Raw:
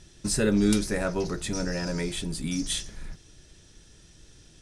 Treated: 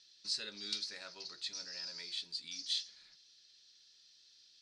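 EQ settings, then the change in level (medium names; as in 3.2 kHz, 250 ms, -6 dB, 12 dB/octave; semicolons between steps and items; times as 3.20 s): band-pass filter 4.4 kHz, Q 6.2; distance through air 87 m; +7.5 dB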